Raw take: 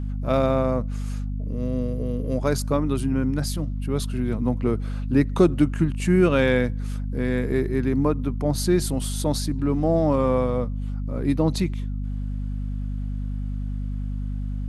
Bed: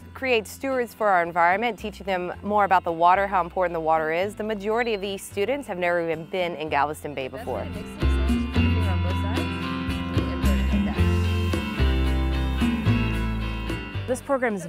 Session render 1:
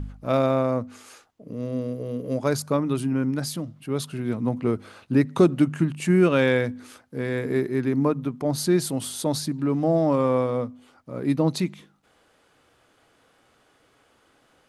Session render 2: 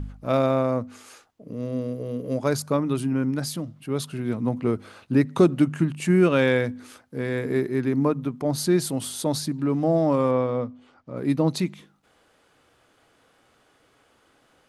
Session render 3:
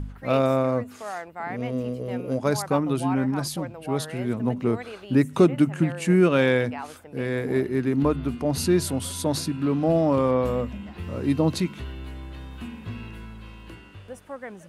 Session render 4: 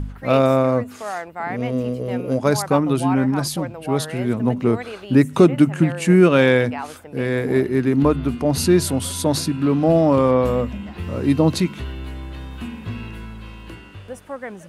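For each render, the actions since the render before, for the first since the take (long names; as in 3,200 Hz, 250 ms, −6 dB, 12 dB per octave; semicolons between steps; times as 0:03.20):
hum removal 50 Hz, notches 5
0:10.31–0:11.17: high-frequency loss of the air 100 metres
mix in bed −14 dB
level +5.5 dB; brickwall limiter −2 dBFS, peak gain reduction 1 dB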